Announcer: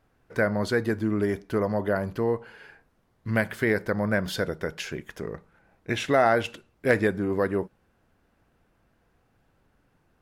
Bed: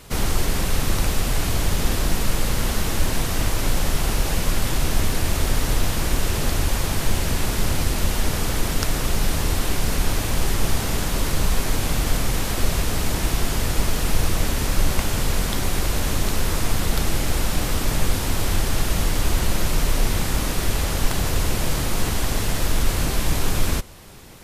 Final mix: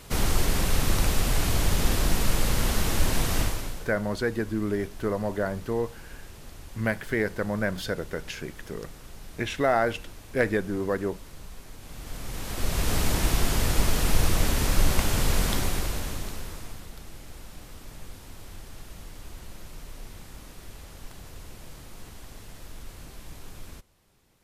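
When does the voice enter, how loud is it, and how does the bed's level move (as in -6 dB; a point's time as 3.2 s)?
3.50 s, -2.5 dB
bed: 3.4 s -2.5 dB
3.95 s -23 dB
11.77 s -23 dB
12.92 s -2 dB
15.52 s -2 dB
16.94 s -22 dB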